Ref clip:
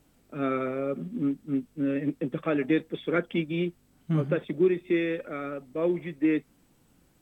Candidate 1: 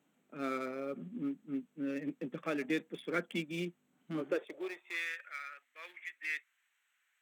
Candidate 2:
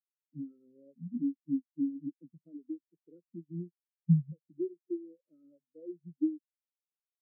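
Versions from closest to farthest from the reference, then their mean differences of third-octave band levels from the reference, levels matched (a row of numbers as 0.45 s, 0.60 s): 1, 2; 8.0 dB, 14.5 dB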